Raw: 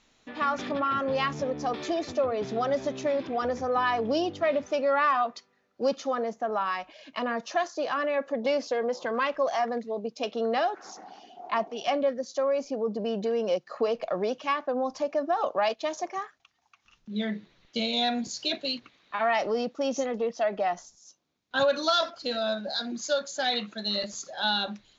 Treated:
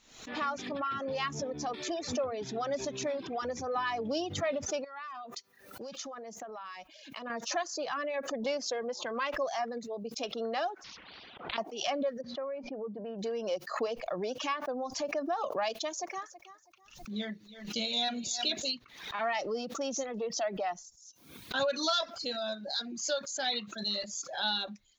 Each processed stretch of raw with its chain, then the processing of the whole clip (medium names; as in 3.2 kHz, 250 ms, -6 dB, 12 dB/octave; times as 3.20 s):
4.84–7.30 s: treble shelf 3.6 kHz +5 dB + compression 16:1, threshold -32 dBFS
10.84–11.58 s: steep low-pass 3.2 kHz + slow attack 229 ms + spectrum-flattening compressor 10:1
12.21–13.19 s: low-pass 2.2 kHz 24 dB/octave + hum notches 60/120/180/240 Hz + compression 2:1, threshold -29 dBFS
15.90–18.71 s: treble shelf 6.6 kHz +6 dB + feedback delay 324 ms, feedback 24%, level -14 dB
whole clip: reverb removal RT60 0.68 s; treble shelf 5.8 kHz +11.5 dB; swell ahead of each attack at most 86 dB/s; trim -6.5 dB